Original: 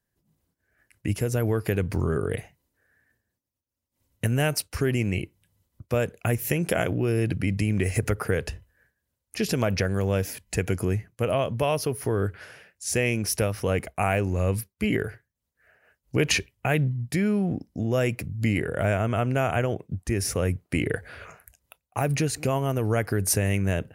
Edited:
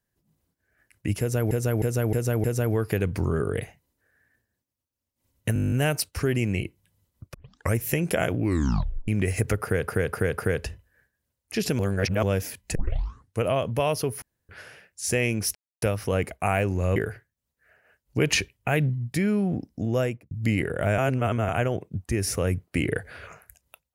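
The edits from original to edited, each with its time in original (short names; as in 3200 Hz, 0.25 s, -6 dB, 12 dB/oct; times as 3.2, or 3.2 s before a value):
1.2–1.51 loop, 5 plays
4.3 stutter 0.02 s, 10 plays
5.92 tape start 0.42 s
6.95 tape stop 0.71 s
8.21–8.46 loop, 4 plays
9.62–10.06 reverse
10.58 tape start 0.67 s
12.05–12.32 room tone
13.38 insert silence 0.27 s
14.52–14.94 cut
17.93–18.29 studio fade out
18.96–19.47 reverse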